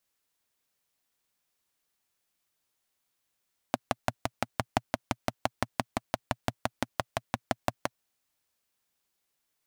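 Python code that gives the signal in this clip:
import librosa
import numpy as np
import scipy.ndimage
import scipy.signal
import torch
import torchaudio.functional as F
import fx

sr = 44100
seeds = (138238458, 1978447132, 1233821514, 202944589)

y = fx.engine_single(sr, seeds[0], length_s=4.27, rpm=700, resonances_hz=(120.0, 240.0, 660.0))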